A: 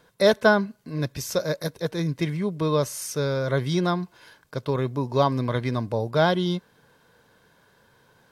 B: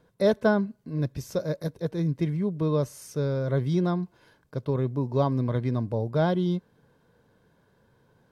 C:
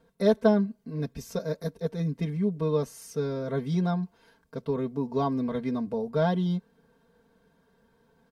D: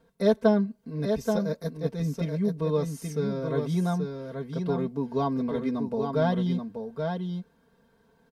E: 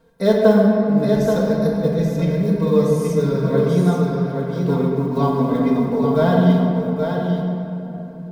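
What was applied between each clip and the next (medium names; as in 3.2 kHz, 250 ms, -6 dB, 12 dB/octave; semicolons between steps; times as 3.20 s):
tilt shelf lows +6.5 dB, about 720 Hz; trim -5.5 dB
comb 4.4 ms, depth 90%; trim -3.5 dB
delay 830 ms -5.5 dB
block-companded coder 7-bit; simulated room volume 150 m³, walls hard, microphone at 0.55 m; trim +5 dB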